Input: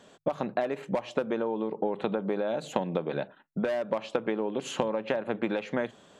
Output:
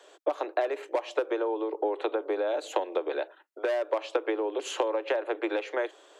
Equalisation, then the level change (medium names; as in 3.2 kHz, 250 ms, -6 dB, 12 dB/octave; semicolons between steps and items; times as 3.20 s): steep high-pass 310 Hz 96 dB/octave; +1.5 dB